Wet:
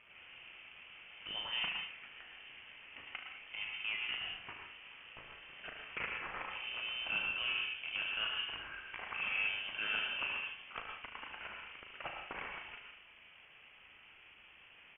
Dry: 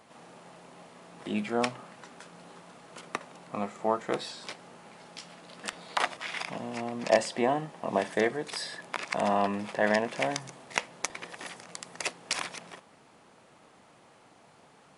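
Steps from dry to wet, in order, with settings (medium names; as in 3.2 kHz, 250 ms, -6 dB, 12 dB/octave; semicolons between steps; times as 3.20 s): local Wiener filter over 9 samples; high-pass 390 Hz 6 dB/octave; in parallel at -2.5 dB: compression, threshold -39 dBFS, peak gain reduction 19.5 dB; on the sum: companded quantiser 4-bit; saturation -22.5 dBFS, distortion -8 dB; early reflections 37 ms -7.5 dB, 75 ms -9 dB; on a send at -3 dB: reverberation RT60 0.45 s, pre-delay 103 ms; on the sum: frequency inversion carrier 3.3 kHz; trim -9 dB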